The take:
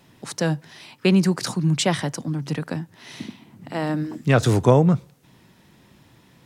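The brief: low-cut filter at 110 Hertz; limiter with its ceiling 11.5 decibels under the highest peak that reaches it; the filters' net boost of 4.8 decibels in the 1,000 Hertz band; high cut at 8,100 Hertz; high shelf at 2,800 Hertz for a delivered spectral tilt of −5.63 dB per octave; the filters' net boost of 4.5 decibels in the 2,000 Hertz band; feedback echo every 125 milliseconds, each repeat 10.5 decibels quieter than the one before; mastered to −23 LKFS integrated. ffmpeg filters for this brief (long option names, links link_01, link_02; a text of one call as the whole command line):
ffmpeg -i in.wav -af "highpass=110,lowpass=8100,equalizer=frequency=1000:width_type=o:gain=5.5,equalizer=frequency=2000:width_type=o:gain=6.5,highshelf=frequency=2800:gain=-6.5,alimiter=limit=-13dB:level=0:latency=1,aecho=1:1:125|250|375:0.299|0.0896|0.0269,volume=1.5dB" out.wav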